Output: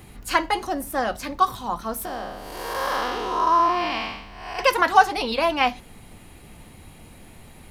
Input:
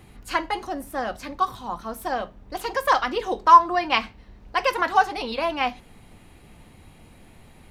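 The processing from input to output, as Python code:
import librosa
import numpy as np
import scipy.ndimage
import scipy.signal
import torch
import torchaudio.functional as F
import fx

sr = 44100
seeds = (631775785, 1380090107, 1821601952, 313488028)

y = fx.spec_blur(x, sr, span_ms=315.0, at=(2.05, 4.59))
y = fx.high_shelf(y, sr, hz=7300.0, db=7.5)
y = y * 10.0 ** (3.5 / 20.0)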